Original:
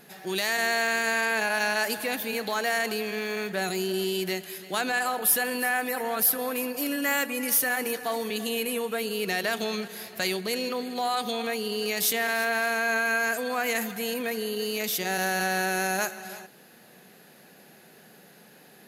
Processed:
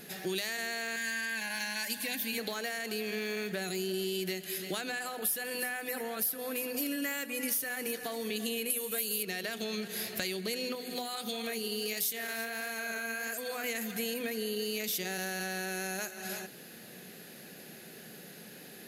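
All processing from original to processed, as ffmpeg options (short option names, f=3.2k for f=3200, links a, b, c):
-filter_complex "[0:a]asettb=1/sr,asplit=3[a][b][c];[a]atrim=end=0.964[d];[b]atrim=start=0.96:end=2.38,asetpts=PTS-STARTPTS,afade=t=in:d=0.004:c=qsin,afade=t=out:st=1.416:d=0.004:c=qsin,asuperstop=centerf=1300:order=20:qfactor=5.6,equalizer=f=430:w=1.1:g=-12,aecho=1:1:3.8:0.42,atrim=end_sample=62622[e];[c]atrim=start=2.376[f];[d][e]acrossfade=d=0.004:c1=hsin:c2=qsin[g];[g][f]acrossfade=d=0.004:c1=qsin:c2=hsin,asettb=1/sr,asplit=3[h][i][j];[h]atrim=end=8.704[k];[i]atrim=start=8.7:end=9.23,asetpts=PTS-STARTPTS,afade=t=in:d=0.004:c=qsin,afade=t=out:st=0.526:d=0.004:c=qsin,aemphasis=mode=production:type=75fm,asplit=2[l][m];[m]adelay=15,volume=-11.5dB[n];[l][n]amix=inputs=2:normalize=0,atrim=end_sample=23373[o];[j]atrim=start=9.226[p];[k][o]acrossfade=d=0.004:c1=hsin:c2=qsin[q];[q][p]acrossfade=d=0.004:c1=qsin:c2=hsin,asettb=1/sr,asplit=3[r][s][t];[r]atrim=end=10.754[u];[s]atrim=start=10.75:end=13.64,asetpts=PTS-STARTPTS,afade=t=in:d=0.004:c=qsin,afade=t=out:st=2.886:d=0.004:c=qsin,highshelf=f=8.3k:g=7.5,flanger=delay=0.9:depth=8:regen=59:speed=1.5:shape=sinusoidal[v];[t]atrim=start=13.636[w];[u][v]acrossfade=d=0.004:c1=hsin:c2=qsin[x];[x][w]acrossfade=d=0.004:c1=qsin:c2=hsin,bandreject=f=50:t=h:w=6,bandreject=f=100:t=h:w=6,bandreject=f=150:t=h:w=6,bandreject=f=200:t=h:w=6,bandreject=f=250:t=h:w=6,acompressor=threshold=-36dB:ratio=6,equalizer=f=940:t=o:w=1.3:g=-9,volume=5.5dB"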